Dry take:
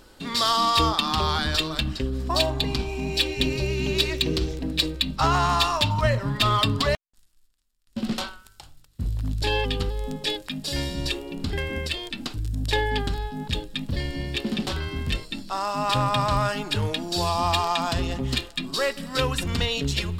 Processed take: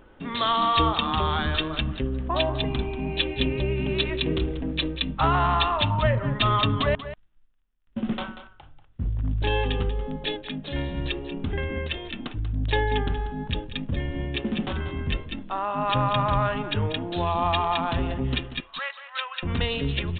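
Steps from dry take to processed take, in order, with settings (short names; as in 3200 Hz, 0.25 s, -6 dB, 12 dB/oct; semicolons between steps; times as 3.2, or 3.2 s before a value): Wiener smoothing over 9 samples; 18.6–19.43 Bessel high-pass 1200 Hz, order 8; on a send: echo 0.188 s -12.5 dB; on the sum: downsampling 8000 Hz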